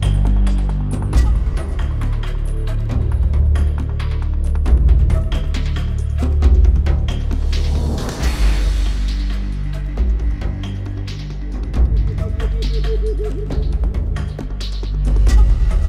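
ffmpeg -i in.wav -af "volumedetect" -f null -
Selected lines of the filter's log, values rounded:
mean_volume: -15.7 dB
max_volume: -2.5 dB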